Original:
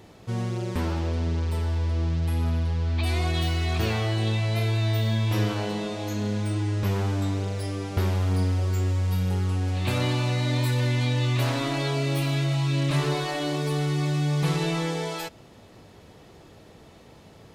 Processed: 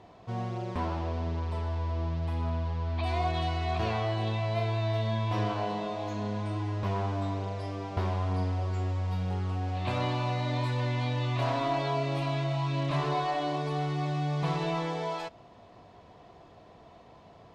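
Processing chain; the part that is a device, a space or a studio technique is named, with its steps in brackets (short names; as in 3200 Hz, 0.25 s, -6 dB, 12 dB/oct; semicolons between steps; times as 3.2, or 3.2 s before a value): inside a cardboard box (LPF 4800 Hz 12 dB/oct; small resonant body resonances 710/1000 Hz, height 13 dB, ringing for 30 ms); gain -6.5 dB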